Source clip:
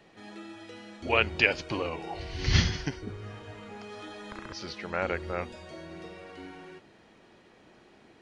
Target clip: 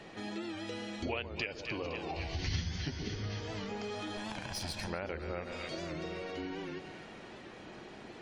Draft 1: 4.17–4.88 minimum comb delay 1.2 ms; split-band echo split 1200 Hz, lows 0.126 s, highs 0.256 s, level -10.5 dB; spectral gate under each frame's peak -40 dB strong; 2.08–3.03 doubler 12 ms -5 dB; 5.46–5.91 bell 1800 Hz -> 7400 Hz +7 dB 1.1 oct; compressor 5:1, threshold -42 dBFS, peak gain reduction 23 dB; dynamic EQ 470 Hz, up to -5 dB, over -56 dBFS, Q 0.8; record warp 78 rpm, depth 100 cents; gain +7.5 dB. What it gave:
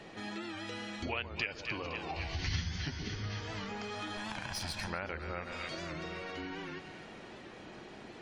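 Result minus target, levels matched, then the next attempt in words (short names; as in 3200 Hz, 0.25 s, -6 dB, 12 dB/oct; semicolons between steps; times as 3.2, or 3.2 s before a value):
500 Hz band -3.5 dB
4.17–4.88 minimum comb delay 1.2 ms; split-band echo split 1200 Hz, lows 0.126 s, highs 0.256 s, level -10.5 dB; spectral gate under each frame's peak -40 dB strong; 2.08–3.03 doubler 12 ms -5 dB; 5.46–5.91 bell 1800 Hz -> 7400 Hz +7 dB 1.1 oct; compressor 5:1, threshold -42 dBFS, peak gain reduction 23 dB; dynamic EQ 1300 Hz, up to -5 dB, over -56 dBFS, Q 0.8; record warp 78 rpm, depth 100 cents; gain +7.5 dB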